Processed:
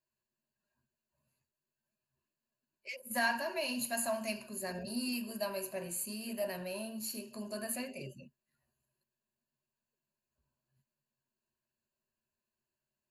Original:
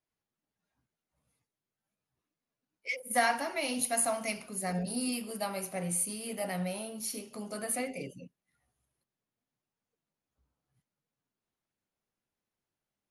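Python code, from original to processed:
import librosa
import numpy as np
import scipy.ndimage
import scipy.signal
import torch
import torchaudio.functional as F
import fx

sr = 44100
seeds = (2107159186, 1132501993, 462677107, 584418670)

p1 = fx.ripple_eq(x, sr, per_octave=1.4, db=14)
p2 = 10.0 ** (-28.0 / 20.0) * np.tanh(p1 / 10.0 ** (-28.0 / 20.0))
p3 = p1 + (p2 * 10.0 ** (-9.0 / 20.0))
y = p3 * 10.0 ** (-7.5 / 20.0)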